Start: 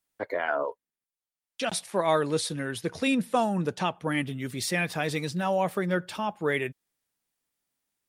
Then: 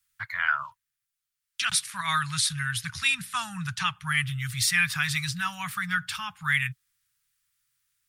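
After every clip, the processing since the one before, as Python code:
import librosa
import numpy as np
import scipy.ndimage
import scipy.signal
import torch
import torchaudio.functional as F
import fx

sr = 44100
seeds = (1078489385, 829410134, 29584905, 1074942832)

y = scipy.signal.sosfilt(scipy.signal.cheby1(3, 1.0, [130.0, 1300.0], 'bandstop', fs=sr, output='sos'), x)
y = y * librosa.db_to_amplitude(7.5)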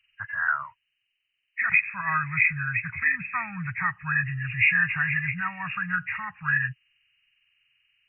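y = fx.freq_compress(x, sr, knee_hz=1600.0, ratio=4.0)
y = fx.peak_eq(y, sr, hz=320.0, db=2.5, octaves=0.77)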